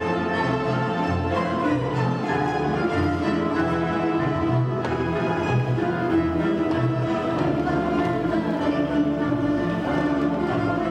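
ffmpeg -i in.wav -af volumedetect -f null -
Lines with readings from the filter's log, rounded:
mean_volume: -22.6 dB
max_volume: -11.8 dB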